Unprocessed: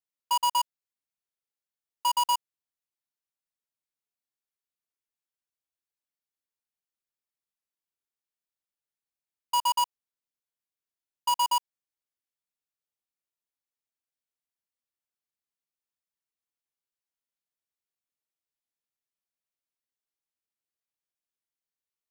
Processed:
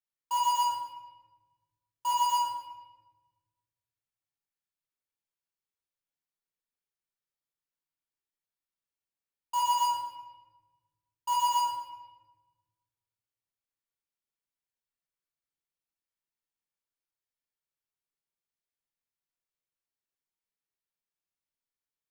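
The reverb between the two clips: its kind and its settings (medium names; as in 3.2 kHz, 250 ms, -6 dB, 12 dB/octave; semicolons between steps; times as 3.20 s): simulated room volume 890 m³, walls mixed, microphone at 4.4 m; trim -11.5 dB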